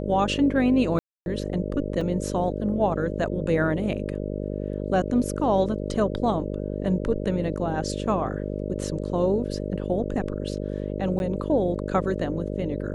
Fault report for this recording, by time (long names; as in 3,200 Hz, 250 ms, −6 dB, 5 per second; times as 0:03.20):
mains buzz 50 Hz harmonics 12 −30 dBFS
0:00.99–0:01.26: drop-out 271 ms
0:02.01: drop-out 3.9 ms
0:11.19–0:11.20: drop-out 11 ms